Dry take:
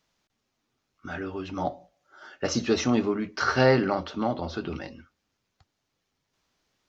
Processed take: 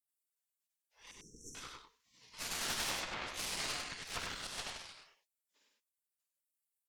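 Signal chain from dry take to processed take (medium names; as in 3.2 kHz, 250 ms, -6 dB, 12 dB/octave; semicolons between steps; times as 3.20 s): phase randomisation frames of 200 ms; 4.07–4.47 s: waveshaping leveller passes 1; compression 6:1, threshold -26 dBFS, peak gain reduction 10.5 dB; spectral gate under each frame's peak -25 dB weak; Chebyshev shaper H 6 -8 dB, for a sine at -30.5 dBFS; 1.11–1.55 s: brick-wall FIR band-stop 490–5400 Hz; on a send: delay 98 ms -4 dB; on the sum: warped record 45 rpm, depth 100 cents; trim +2.5 dB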